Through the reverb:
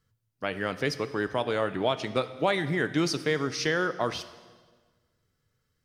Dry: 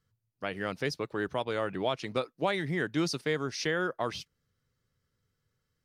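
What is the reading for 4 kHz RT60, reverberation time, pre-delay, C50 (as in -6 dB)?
1.3 s, 1.5 s, 3 ms, 13.5 dB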